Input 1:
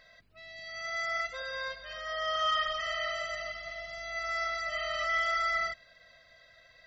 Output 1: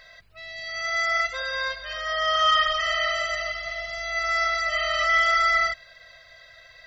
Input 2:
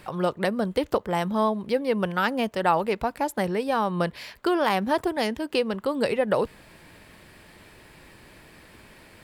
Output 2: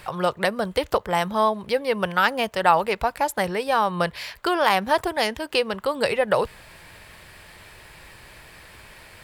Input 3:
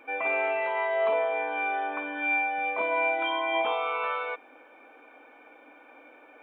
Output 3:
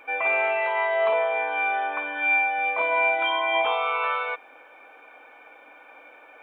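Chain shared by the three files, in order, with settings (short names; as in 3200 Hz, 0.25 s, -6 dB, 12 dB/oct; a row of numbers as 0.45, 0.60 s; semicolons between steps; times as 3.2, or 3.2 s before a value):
bell 260 Hz -11.5 dB 1.5 oct; match loudness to -23 LUFS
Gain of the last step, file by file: +10.0, +6.0, +5.5 dB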